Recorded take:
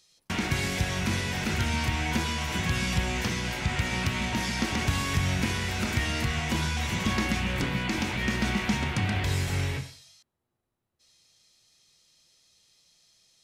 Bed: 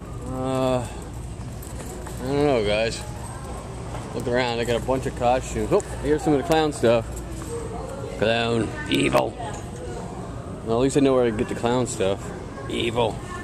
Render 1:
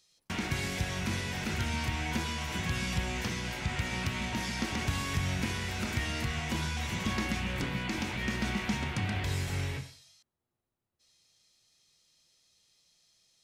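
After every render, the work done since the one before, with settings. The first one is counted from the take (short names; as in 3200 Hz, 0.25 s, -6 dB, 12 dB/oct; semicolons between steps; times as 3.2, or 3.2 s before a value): gain -5 dB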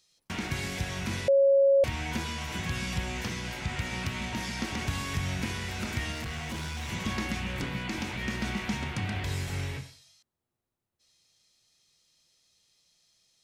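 1.28–1.84 bleep 551 Hz -17.5 dBFS; 6.12–6.89 hard clip -32.5 dBFS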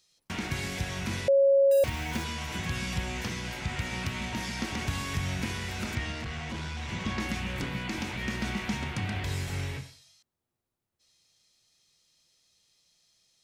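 1.71–2.24 short-mantissa float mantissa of 2-bit; 5.95–7.2 air absorption 65 m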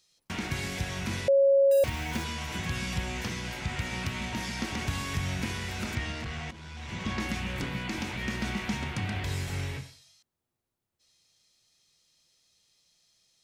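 6.51–7.12 fade in, from -13.5 dB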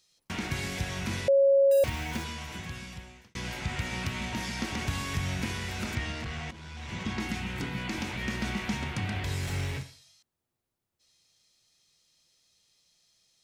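1.92–3.35 fade out; 7.03–7.78 notch comb 570 Hz; 9.43–9.83 G.711 law mismatch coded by mu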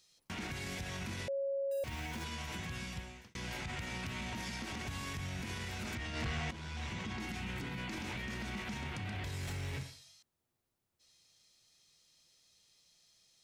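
compressor 4:1, threshold -32 dBFS, peak gain reduction 10.5 dB; limiter -32.5 dBFS, peak gain reduction 10 dB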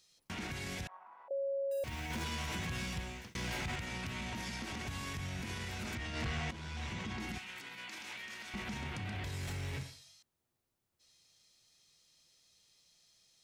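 0.87–1.31 Butterworth band-pass 950 Hz, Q 2.4; 2.1–3.76 G.711 law mismatch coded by mu; 7.38–8.54 HPF 1500 Hz 6 dB/oct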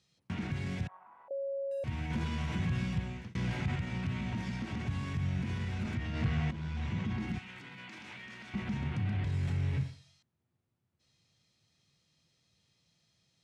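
Chebyshev band-pass 110–8700 Hz, order 2; tone controls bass +12 dB, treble -11 dB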